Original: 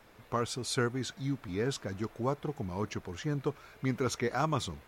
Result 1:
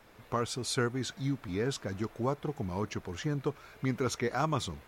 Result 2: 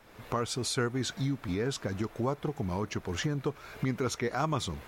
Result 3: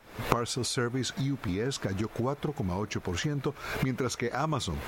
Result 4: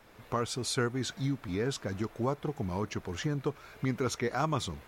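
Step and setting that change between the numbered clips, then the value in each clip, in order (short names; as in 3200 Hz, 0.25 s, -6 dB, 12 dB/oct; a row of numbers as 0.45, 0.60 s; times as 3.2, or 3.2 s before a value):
recorder AGC, rising by: 5.8, 35, 90, 14 dB/s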